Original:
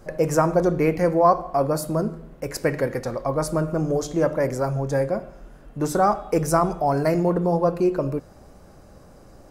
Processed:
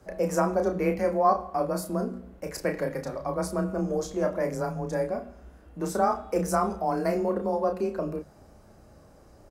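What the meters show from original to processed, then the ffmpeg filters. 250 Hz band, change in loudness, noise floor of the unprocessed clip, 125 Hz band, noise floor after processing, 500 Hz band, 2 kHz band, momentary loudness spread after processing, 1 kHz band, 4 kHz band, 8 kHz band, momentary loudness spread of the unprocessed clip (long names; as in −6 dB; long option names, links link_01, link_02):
−6.0 dB, −5.5 dB, −48 dBFS, −9.0 dB, −54 dBFS, −5.5 dB, −5.5 dB, 9 LU, −4.5 dB, −5.5 dB, −5.5 dB, 8 LU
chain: -filter_complex "[0:a]asplit=2[link_01][link_02];[link_02]adelay=32,volume=-6dB[link_03];[link_01][link_03]amix=inputs=2:normalize=0,afreqshift=24,bandreject=frequency=48.1:width_type=h:width=4,bandreject=frequency=96.2:width_type=h:width=4,bandreject=frequency=144.3:width_type=h:width=4,bandreject=frequency=192.4:width_type=h:width=4,bandreject=frequency=240.5:width_type=h:width=4,volume=-6.5dB"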